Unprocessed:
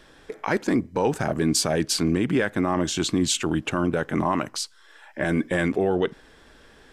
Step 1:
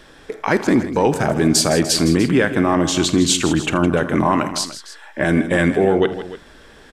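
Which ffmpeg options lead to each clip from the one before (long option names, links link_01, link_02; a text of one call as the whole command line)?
ffmpeg -i in.wav -af "aecho=1:1:47|80|161|297:0.133|0.133|0.237|0.158,volume=6.5dB" out.wav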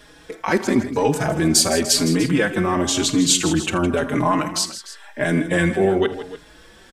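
ffmpeg -i in.wav -filter_complex "[0:a]highshelf=frequency=4100:gain=6,asplit=2[link_01][link_02];[link_02]adelay=4.4,afreqshift=0.95[link_03];[link_01][link_03]amix=inputs=2:normalize=1" out.wav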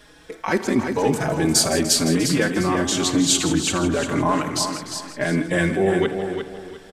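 ffmpeg -i in.wav -af "aecho=1:1:352|704|1056|1408:0.447|0.13|0.0376|0.0109,volume=-2dB" out.wav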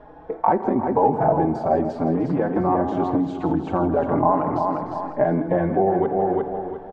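ffmpeg -i in.wav -af "acompressor=threshold=-23dB:ratio=6,lowpass=frequency=810:width_type=q:width=3.7,volume=4dB" out.wav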